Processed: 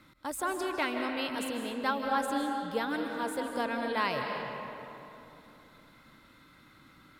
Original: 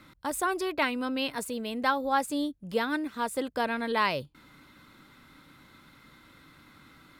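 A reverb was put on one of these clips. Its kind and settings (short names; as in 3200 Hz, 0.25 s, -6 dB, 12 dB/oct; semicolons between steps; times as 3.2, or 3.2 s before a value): digital reverb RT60 3.1 s, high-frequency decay 0.55×, pre-delay 0.115 s, DRR 2.5 dB; gain -4.5 dB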